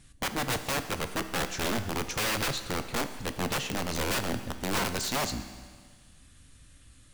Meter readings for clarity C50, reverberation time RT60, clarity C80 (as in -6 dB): 10.5 dB, 1.6 s, 12.0 dB